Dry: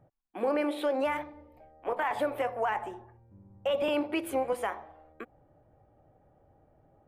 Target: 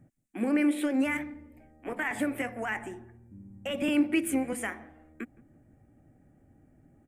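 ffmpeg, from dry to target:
-filter_complex "[0:a]equalizer=f=250:t=o:w=1:g=11,equalizer=f=500:t=o:w=1:g=-9,equalizer=f=1k:t=o:w=1:g=-12,equalizer=f=2k:t=o:w=1:g=8,equalizer=f=4k:t=o:w=1:g=-10,equalizer=f=8k:t=o:w=1:g=11,asplit=2[a][b];[b]adelay=167,lowpass=f=840:p=1,volume=-20.5dB,asplit=2[c][d];[d]adelay=167,lowpass=f=840:p=1,volume=0.45,asplit=2[e][f];[f]adelay=167,lowpass=f=840:p=1,volume=0.45[g];[a][c][e][g]amix=inputs=4:normalize=0,volume=2.5dB"

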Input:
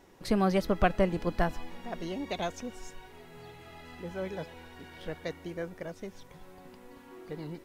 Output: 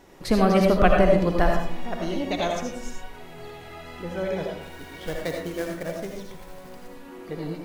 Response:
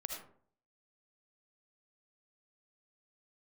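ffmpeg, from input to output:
-filter_complex "[0:a]asettb=1/sr,asplit=3[a][b][c];[a]atrim=end=4.614[d];[b]atrim=start=4.61:end=6.88,asetpts=PTS-STARTPTS,afade=t=in:d=0.004:c=qsin,afade=t=out:st=2.266:d=0.004:c=qsin,acrusher=bits=3:mode=log:mix=0:aa=0.000001[e];[c]atrim=start=6.876[f];[d][e]acrossfade=d=0.004:c1=hsin:c2=qsin[g];[g][f]acrossfade=d=0.004:c1=qsin:c2=hsin[h];[1:a]atrim=start_sample=2205,asetrate=41454,aresample=44100[i];[h][i]afir=irnorm=-1:irlink=0,volume=8.5dB"

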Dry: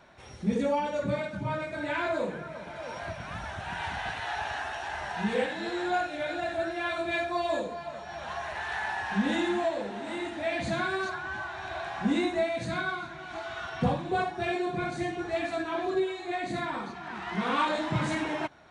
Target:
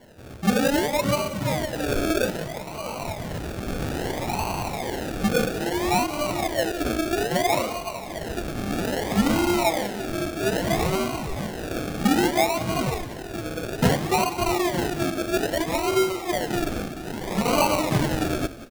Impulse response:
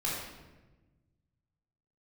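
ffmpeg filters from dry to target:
-filter_complex "[0:a]acrusher=samples=35:mix=1:aa=0.000001:lfo=1:lforange=21:lforate=0.61,asettb=1/sr,asplit=3[a][b][c];[a]atrim=end=7.124[d];[b]atrim=start=7.12:end=7.67,asetpts=PTS-STARTPTS,afade=t=in:d=0.004:c=qsin,afade=t=out:st=0.546:d=0.004:c=qsin,afreqshift=19[e];[c]atrim=start=7.666[f];[d][e]acrossfade=d=0.004:c1=hsin:c2=qsin[g];[g][f]acrossfade=d=0.004:c1=qsin:c2=hsin,asplit=4[h][i][j][k];[i]adelay=180,afreqshift=-33,volume=-15dB[l];[j]adelay=360,afreqshift=-66,volume=-23.9dB[m];[k]adelay=540,afreqshift=-99,volume=-32.7dB[n];[h][l][m][n]amix=inputs=4:normalize=0,volume=6.5dB"

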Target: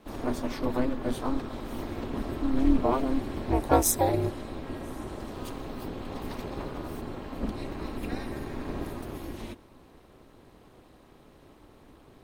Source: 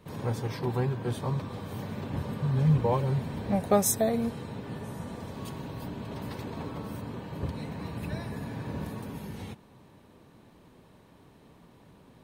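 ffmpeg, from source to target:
-filter_complex "[0:a]asplit=2[a][b];[b]asetrate=55563,aresample=44100,atempo=0.793701,volume=-11dB[c];[a][c]amix=inputs=2:normalize=0,aeval=exprs='val(0)*sin(2*PI*130*n/s)':c=same,volume=4dB"

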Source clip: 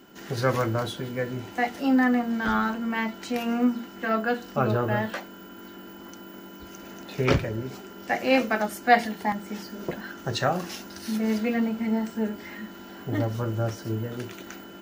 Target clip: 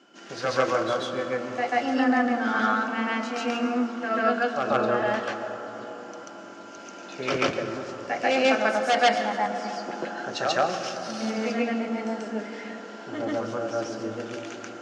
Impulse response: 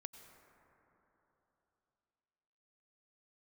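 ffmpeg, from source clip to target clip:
-filter_complex "[0:a]aeval=exprs='0.224*(abs(mod(val(0)/0.224+3,4)-2)-1)':c=same,highpass=360,equalizer=f=410:t=q:w=4:g=-6,equalizer=f=940:t=q:w=4:g=-6,equalizer=f=1.9k:t=q:w=4:g=-6,equalizer=f=3.9k:t=q:w=4:g=-5,lowpass=f=6.5k:w=0.5412,lowpass=f=6.5k:w=1.3066,asplit=2[a][b];[1:a]atrim=start_sample=2205,asetrate=35721,aresample=44100,adelay=138[c];[b][c]afir=irnorm=-1:irlink=0,volume=8.5dB[d];[a][d]amix=inputs=2:normalize=0"

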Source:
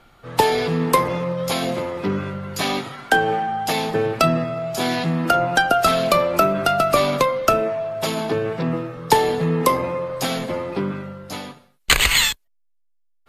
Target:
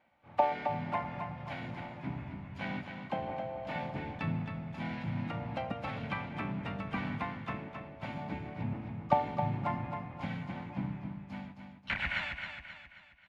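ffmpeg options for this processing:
-filter_complex "[0:a]highpass=55,acrossover=split=4200[a][b];[b]acompressor=threshold=-37dB:ratio=4:attack=1:release=60[c];[a][c]amix=inputs=2:normalize=0,asplit=3[d][e][f];[d]bandpass=f=300:t=q:w=8,volume=0dB[g];[e]bandpass=f=870:t=q:w=8,volume=-6dB[h];[f]bandpass=f=2.24k:t=q:w=8,volume=-9dB[i];[g][h][i]amix=inputs=3:normalize=0,equalizer=f=320:t=o:w=0.99:g=-13.5,tremolo=f=87:d=0.182,asplit=4[j][k][l][m];[k]asetrate=29433,aresample=44100,atempo=1.49831,volume=-2dB[n];[l]asetrate=37084,aresample=44100,atempo=1.18921,volume=-3dB[o];[m]asetrate=58866,aresample=44100,atempo=0.749154,volume=-14dB[p];[j][n][o][p]amix=inputs=4:normalize=0,asubboost=boost=4.5:cutoff=200,asplit=2[q][r];[r]aecho=0:1:267|534|801|1068|1335:0.447|0.197|0.0865|0.0381|0.0167[s];[q][s]amix=inputs=2:normalize=0,volume=-2.5dB"

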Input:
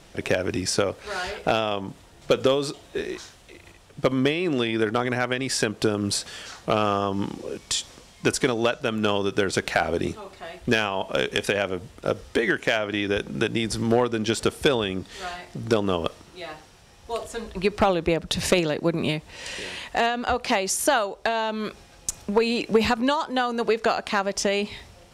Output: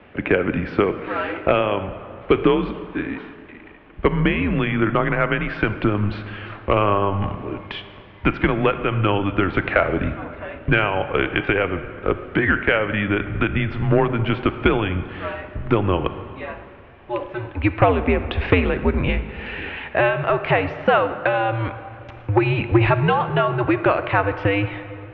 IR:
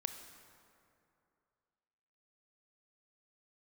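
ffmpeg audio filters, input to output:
-filter_complex "[0:a]asubboost=boost=7:cutoff=110,asplit=2[a][b];[1:a]atrim=start_sample=2205,lowpass=8.2k[c];[b][c]afir=irnorm=-1:irlink=0,volume=7.5dB[d];[a][d]amix=inputs=2:normalize=0,highpass=f=170:t=q:w=0.5412,highpass=f=170:t=q:w=1.307,lowpass=f=2.8k:t=q:w=0.5176,lowpass=f=2.8k:t=q:w=0.7071,lowpass=f=2.8k:t=q:w=1.932,afreqshift=-100,volume=-3.5dB"

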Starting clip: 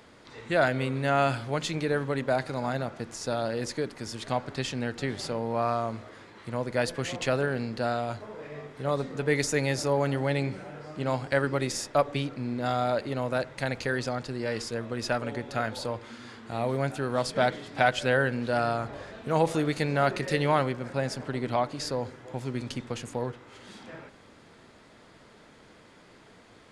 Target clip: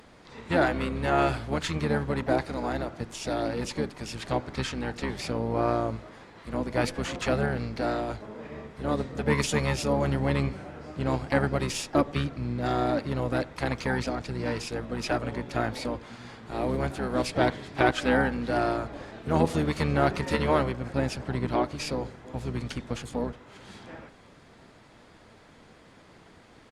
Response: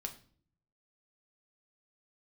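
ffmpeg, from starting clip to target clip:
-filter_complex "[0:a]asplit=4[a][b][c][d];[b]asetrate=22050,aresample=44100,atempo=2,volume=-2dB[e];[c]asetrate=35002,aresample=44100,atempo=1.25992,volume=-15dB[f];[d]asetrate=55563,aresample=44100,atempo=0.793701,volume=-14dB[g];[a][e][f][g]amix=inputs=4:normalize=0,volume=-1.5dB" -ar 48000 -c:a libopus -b:a 64k

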